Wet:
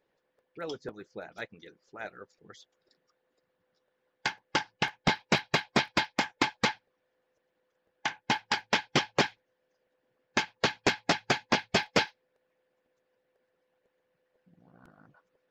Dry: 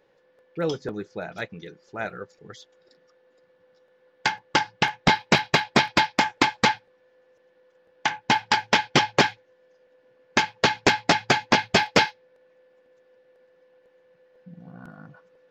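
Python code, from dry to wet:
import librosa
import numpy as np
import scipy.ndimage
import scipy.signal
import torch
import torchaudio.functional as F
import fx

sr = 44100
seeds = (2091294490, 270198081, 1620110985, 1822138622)

y = fx.hpss(x, sr, part='harmonic', gain_db=-13)
y = y * librosa.db_to_amplitude(-6.5)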